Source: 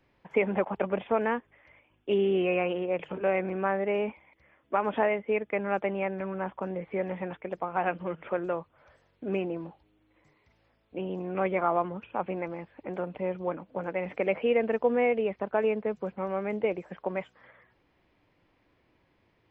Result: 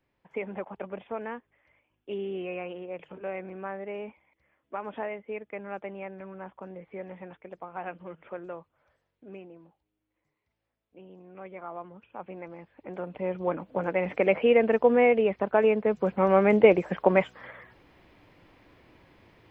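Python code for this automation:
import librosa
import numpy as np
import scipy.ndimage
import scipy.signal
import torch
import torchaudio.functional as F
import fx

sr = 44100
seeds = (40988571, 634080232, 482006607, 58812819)

y = fx.gain(x, sr, db=fx.line((8.59, -8.5), (9.53, -15.5), (11.43, -15.5), (12.97, -3.0), (13.6, 4.5), (15.81, 4.5), (16.34, 11.0)))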